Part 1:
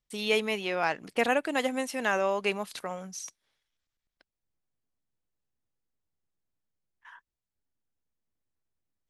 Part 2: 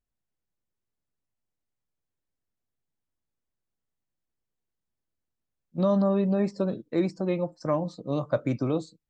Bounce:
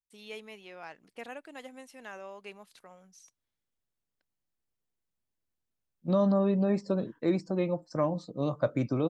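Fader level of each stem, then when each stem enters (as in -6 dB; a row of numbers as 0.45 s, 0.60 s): -17.0 dB, -2.0 dB; 0.00 s, 0.30 s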